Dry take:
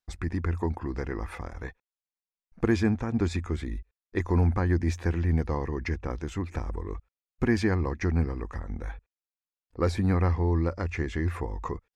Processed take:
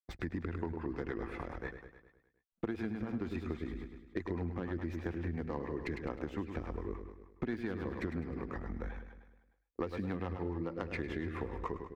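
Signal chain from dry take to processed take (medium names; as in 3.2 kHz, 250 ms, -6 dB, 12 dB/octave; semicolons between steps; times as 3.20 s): tracing distortion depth 0.13 ms; gate -39 dBFS, range -29 dB; bass shelf 110 Hz +7 dB; feedback delay 103 ms, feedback 56%, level -8.5 dB; rotary cabinet horn 7 Hz; three-band isolator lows -14 dB, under 180 Hz, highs -15 dB, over 4 kHz; compression 12:1, threshold -33 dBFS, peak gain reduction 14.5 dB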